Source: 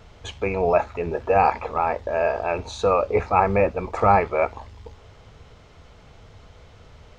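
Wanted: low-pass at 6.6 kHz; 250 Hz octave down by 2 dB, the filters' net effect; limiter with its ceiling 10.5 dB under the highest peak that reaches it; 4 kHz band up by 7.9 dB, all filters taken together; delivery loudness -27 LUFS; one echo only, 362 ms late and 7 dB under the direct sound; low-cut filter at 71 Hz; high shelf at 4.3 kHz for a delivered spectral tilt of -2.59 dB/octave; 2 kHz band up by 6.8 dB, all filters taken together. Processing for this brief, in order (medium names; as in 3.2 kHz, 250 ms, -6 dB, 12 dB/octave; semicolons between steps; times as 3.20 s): high-pass 71 Hz; low-pass 6.6 kHz; peaking EQ 250 Hz -3 dB; peaking EQ 2 kHz +6 dB; peaking EQ 4 kHz +5.5 dB; treble shelf 4.3 kHz +5 dB; peak limiter -12.5 dBFS; delay 362 ms -7 dB; trim -2.5 dB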